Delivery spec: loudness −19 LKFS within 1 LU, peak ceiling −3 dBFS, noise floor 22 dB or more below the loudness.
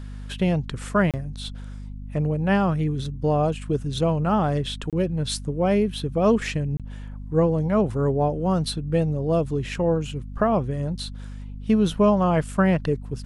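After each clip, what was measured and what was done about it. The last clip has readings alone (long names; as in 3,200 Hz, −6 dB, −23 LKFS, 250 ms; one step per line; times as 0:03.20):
number of dropouts 3; longest dropout 27 ms; mains hum 50 Hz; hum harmonics up to 250 Hz; level of the hum −33 dBFS; integrated loudness −23.5 LKFS; sample peak −8.0 dBFS; target loudness −19.0 LKFS
→ repair the gap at 0:01.11/0:04.90/0:06.77, 27 ms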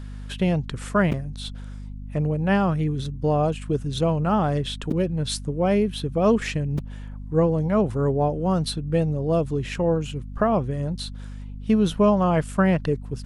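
number of dropouts 0; mains hum 50 Hz; hum harmonics up to 250 Hz; level of the hum −33 dBFS
→ mains-hum notches 50/100/150/200/250 Hz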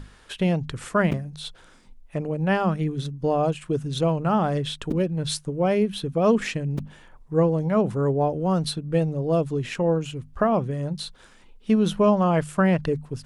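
mains hum none found; integrated loudness −24.0 LKFS; sample peak −9.5 dBFS; target loudness −19.0 LKFS
→ level +5 dB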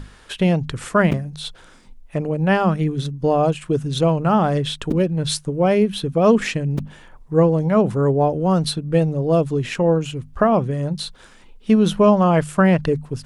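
integrated loudness −19.0 LKFS; sample peak −4.5 dBFS; background noise floor −47 dBFS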